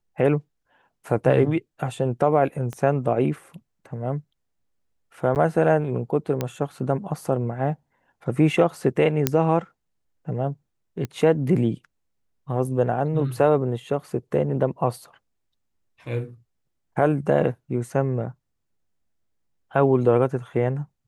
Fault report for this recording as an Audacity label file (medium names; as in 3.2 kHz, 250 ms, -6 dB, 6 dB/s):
2.730000	2.730000	pop -19 dBFS
5.350000	5.360000	dropout 9 ms
6.410000	6.410000	pop -11 dBFS
9.270000	9.270000	pop -2 dBFS
11.050000	11.050000	pop -17 dBFS